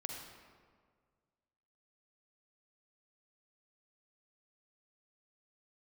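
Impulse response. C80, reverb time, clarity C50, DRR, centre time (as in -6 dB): 3.5 dB, 1.8 s, 2.0 dB, 1.0 dB, 66 ms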